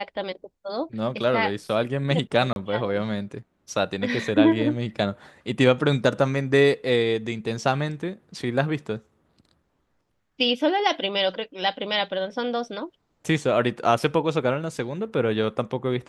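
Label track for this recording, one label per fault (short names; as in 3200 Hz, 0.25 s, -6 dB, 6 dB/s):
2.530000	2.560000	gap 31 ms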